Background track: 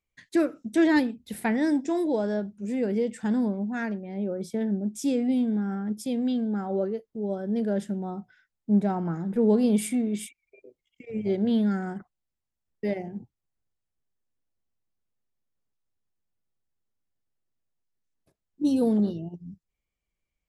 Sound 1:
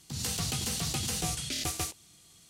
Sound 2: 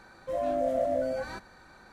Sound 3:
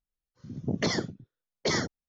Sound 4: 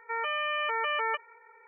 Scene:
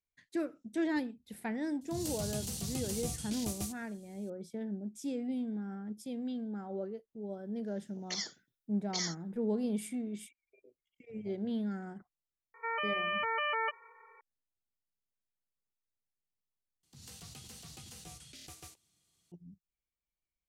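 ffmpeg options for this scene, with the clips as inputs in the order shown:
-filter_complex "[1:a]asplit=2[a][b];[0:a]volume=-11.5dB[c];[a]equalizer=f=1.8k:t=o:w=2.8:g=-11[d];[3:a]aderivative[e];[4:a]aeval=exprs='val(0)+0.001*sin(2*PI*1100*n/s)':c=same[f];[c]asplit=2[g][h];[g]atrim=end=16.834[i];[b]atrim=end=2.49,asetpts=PTS-STARTPTS,volume=-18dB[j];[h]atrim=start=19.316[k];[d]atrim=end=2.49,asetpts=PTS-STARTPTS,volume=-4dB,afade=t=in:d=0.004:c=hsin,afade=t=out:st=2.486:d=0.004:c=hsin,adelay=1810[l];[e]atrim=end=2.08,asetpts=PTS-STARTPTS,volume=-0.5dB,afade=t=in:d=0.004:c=hsin,afade=t=out:st=2.076:d=0.004:c=hsin,adelay=7280[m];[f]atrim=end=1.67,asetpts=PTS-STARTPTS,volume=-3.5dB,afade=t=in:d=0.004:c=hsin,afade=t=out:st=1.666:d=0.004:c=hsin,adelay=12540[n];[i][j]acrossfade=d=0.004:c1=hsin:c2=hsin[o];[o][k]acrossfade=d=0.004:c1=hsin:c2=hsin[p];[p][l][m][n]amix=inputs=4:normalize=0"

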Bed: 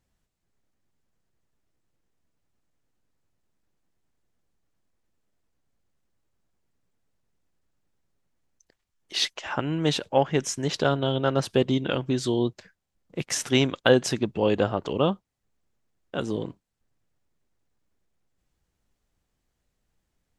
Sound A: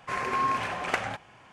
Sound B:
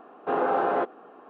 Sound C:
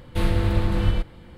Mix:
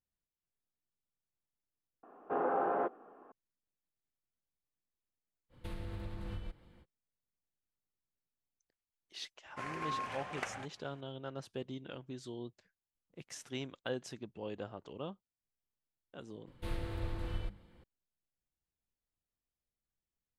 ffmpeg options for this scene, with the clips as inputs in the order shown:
-filter_complex "[3:a]asplit=2[a][b];[0:a]volume=-20dB[c];[2:a]lowpass=1.8k[d];[a]alimiter=limit=-16.5dB:level=0:latency=1:release=250[e];[b]bandreject=f=50:t=h:w=6,bandreject=f=100:t=h:w=6,bandreject=f=150:t=h:w=6,bandreject=f=200:t=h:w=6,bandreject=f=250:t=h:w=6[f];[d]atrim=end=1.29,asetpts=PTS-STARTPTS,volume=-8dB,afade=t=in:d=0.004:c=hsin,afade=t=out:st=1.286:d=0.004:c=hsin,adelay=2030[g];[e]atrim=end=1.37,asetpts=PTS-STARTPTS,volume=-16dB,afade=t=in:d=0.05,afade=t=out:st=1.32:d=0.05,adelay=242109S[h];[1:a]atrim=end=1.52,asetpts=PTS-STARTPTS,volume=-12dB,afade=t=in:d=0.004:c=hsin,afade=t=out:st=1.516:d=0.004:c=hsin,adelay=9490[i];[f]atrim=end=1.37,asetpts=PTS-STARTPTS,volume=-16dB,afade=t=in:d=0.004:c=hsin,afade=t=out:st=1.366:d=0.004:c=hsin,adelay=16470[j];[c][g][h][i][j]amix=inputs=5:normalize=0"

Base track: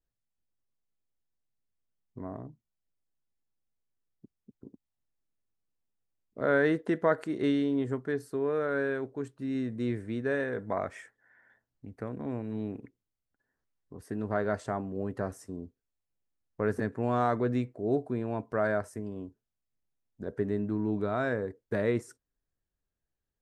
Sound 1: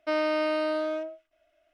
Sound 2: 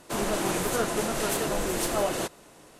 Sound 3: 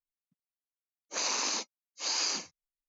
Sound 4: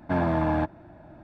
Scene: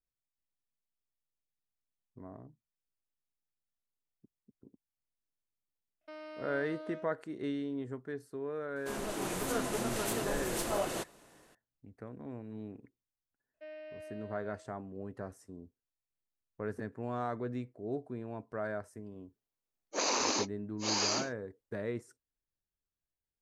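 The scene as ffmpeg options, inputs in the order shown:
-filter_complex "[1:a]asplit=2[a][b];[0:a]volume=-9dB[c];[a]alimiter=limit=-23dB:level=0:latency=1:release=14[d];[2:a]dynaudnorm=f=210:g=5:m=4.5dB[e];[b]asplit=3[f][g][h];[f]bandpass=f=530:t=q:w=8,volume=0dB[i];[g]bandpass=f=1.84k:t=q:w=8,volume=-6dB[j];[h]bandpass=f=2.48k:t=q:w=8,volume=-9dB[k];[i][j][k]amix=inputs=3:normalize=0[l];[3:a]equalizer=f=360:w=0.39:g=11[m];[d]atrim=end=1.73,asetpts=PTS-STARTPTS,volume=-15dB,afade=t=in:d=0.004:c=hsin,afade=t=out:st=1.726:d=0.004:c=hsin,adelay=6010[n];[e]atrim=end=2.79,asetpts=PTS-STARTPTS,volume=-11.5dB,afade=t=in:d=0.004:c=hsin,afade=t=out:st=2.786:d=0.004:c=hsin,adelay=8760[o];[l]atrim=end=1.73,asetpts=PTS-STARTPTS,volume=-10dB,afade=t=in:d=0.004:c=hsin,afade=t=out:st=1.726:d=0.004:c=hsin,adelay=13540[p];[m]atrim=end=2.88,asetpts=PTS-STARTPTS,volume=-2.5dB,afade=t=in:d=0.004:c=hsin,afade=t=out:st=2.876:d=0.004:c=hsin,adelay=18820[q];[c][n][o][p][q]amix=inputs=5:normalize=0"

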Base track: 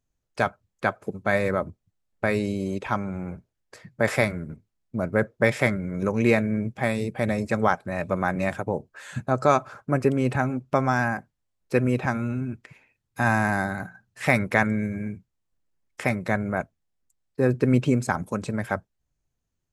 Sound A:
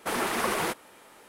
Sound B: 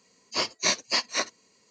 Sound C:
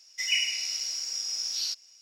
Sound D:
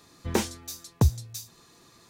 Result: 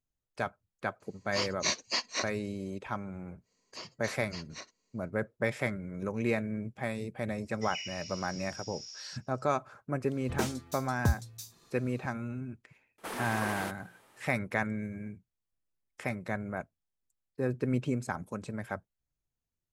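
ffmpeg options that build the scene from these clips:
-filter_complex "[2:a]asplit=2[a][b];[0:a]volume=-10dB[c];[b]alimiter=limit=-19.5dB:level=0:latency=1:release=483[d];[3:a]aresample=16000,aresample=44100[e];[a]atrim=end=1.7,asetpts=PTS-STARTPTS,volume=-6dB,afade=t=in:d=0.004:c=hsin,afade=t=out:st=1.696:d=0.004:c=hsin,adelay=1000[f];[d]atrim=end=1.7,asetpts=PTS-STARTPTS,volume=-12.5dB,afade=t=in:d=0.1,afade=t=out:st=1.6:d=0.1,adelay=150381S[g];[e]atrim=end=2.01,asetpts=PTS-STARTPTS,volume=-14dB,afade=t=in:d=0.004:c=hsin,afade=t=out:st=2.006:d=0.004:c=hsin,adelay=7430[h];[4:a]atrim=end=2.09,asetpts=PTS-STARTPTS,volume=-6.5dB,afade=t=in:d=0.004:c=hsin,afade=t=out:st=2.086:d=0.004:c=hsin,adelay=10040[i];[1:a]atrim=end=1.28,asetpts=PTS-STARTPTS,volume=-9.5dB,afade=t=in:d=0.004:c=hsin,afade=t=out:st=1.276:d=0.004:c=hsin,adelay=12980[j];[c][f][g][h][i][j]amix=inputs=6:normalize=0"

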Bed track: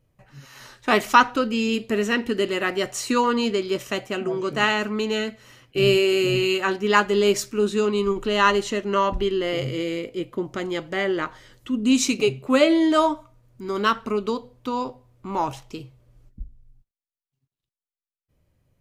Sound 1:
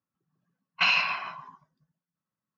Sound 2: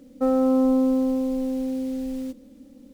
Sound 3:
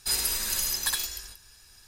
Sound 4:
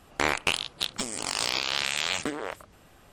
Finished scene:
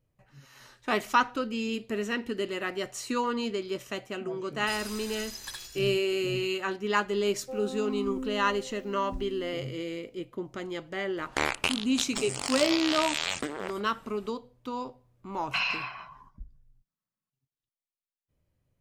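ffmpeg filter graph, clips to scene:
-filter_complex "[0:a]volume=-8.5dB[a];[3:a]acrossover=split=8100[b][c];[c]acompressor=threshold=-41dB:ratio=4:attack=1:release=60[d];[b][d]amix=inputs=2:normalize=0[e];[2:a]asplit=2[f][g];[g]afreqshift=0.87[h];[f][h]amix=inputs=2:normalize=1[i];[e]atrim=end=1.87,asetpts=PTS-STARTPTS,volume=-10dB,afade=t=in:d=0.004:c=hsin,afade=t=out:st=1.866:d=0.004:c=hsin,adelay=203301S[j];[i]atrim=end=2.93,asetpts=PTS-STARTPTS,volume=-13.5dB,afade=t=in:d=0.004:c=hsin,afade=t=out:st=2.926:d=0.004:c=hsin,adelay=7270[k];[4:a]atrim=end=3.12,asetpts=PTS-STARTPTS,volume=-2.5dB,afade=t=in:d=0.004:c=hsin,afade=t=out:st=3.116:d=0.004:c=hsin,adelay=11170[l];[1:a]atrim=end=2.57,asetpts=PTS-STARTPTS,volume=-6dB,afade=t=in:d=0.004:c=hsin,afade=t=out:st=2.566:d=0.004:c=hsin,adelay=14730[m];[a][j][k][l][m]amix=inputs=5:normalize=0"

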